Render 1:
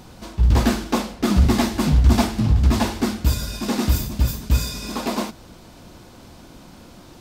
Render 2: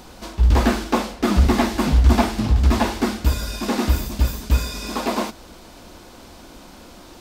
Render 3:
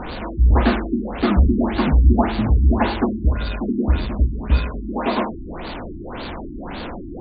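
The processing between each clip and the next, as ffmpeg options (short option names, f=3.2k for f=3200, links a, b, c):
-filter_complex "[0:a]acrossover=split=2800[a][b];[b]acompressor=threshold=-35dB:ratio=4:attack=1:release=60[c];[a][c]amix=inputs=2:normalize=0,equalizer=f=130:t=o:w=1.2:g=-11,volume=3.5dB"
-af "aeval=exprs='val(0)+0.5*0.0596*sgn(val(0))':c=same,afftfilt=real='re*lt(b*sr/1024,350*pow(4800/350,0.5+0.5*sin(2*PI*1.8*pts/sr)))':imag='im*lt(b*sr/1024,350*pow(4800/350,0.5+0.5*sin(2*PI*1.8*pts/sr)))':win_size=1024:overlap=0.75"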